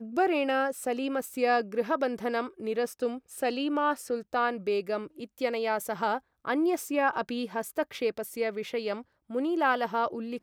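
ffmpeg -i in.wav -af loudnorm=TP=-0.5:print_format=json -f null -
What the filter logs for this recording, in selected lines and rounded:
"input_i" : "-30.1",
"input_tp" : "-13.3",
"input_lra" : "1.6",
"input_thresh" : "-40.1",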